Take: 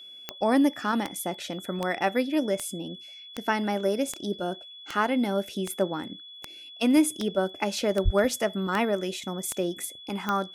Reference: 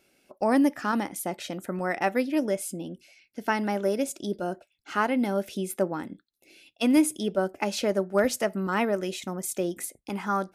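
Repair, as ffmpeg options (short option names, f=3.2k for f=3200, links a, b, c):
-filter_complex "[0:a]adeclick=t=4,bandreject=f=3.4k:w=30,asplit=3[a][b][c];[a]afade=t=out:st=8.04:d=0.02[d];[b]highpass=f=140:w=0.5412,highpass=f=140:w=1.3066,afade=t=in:st=8.04:d=0.02,afade=t=out:st=8.16:d=0.02[e];[c]afade=t=in:st=8.16:d=0.02[f];[d][e][f]amix=inputs=3:normalize=0"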